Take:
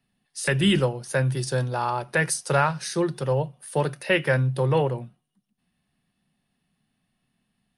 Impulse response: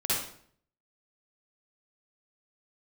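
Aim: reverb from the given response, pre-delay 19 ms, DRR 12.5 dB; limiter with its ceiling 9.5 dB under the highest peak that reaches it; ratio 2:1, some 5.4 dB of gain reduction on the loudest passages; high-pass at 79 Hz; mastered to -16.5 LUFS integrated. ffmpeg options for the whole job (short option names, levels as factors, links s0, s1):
-filter_complex "[0:a]highpass=79,acompressor=threshold=0.0501:ratio=2,alimiter=limit=0.0708:level=0:latency=1,asplit=2[s0][s1];[1:a]atrim=start_sample=2205,adelay=19[s2];[s1][s2]afir=irnorm=-1:irlink=0,volume=0.0841[s3];[s0][s3]amix=inputs=2:normalize=0,volume=6.31"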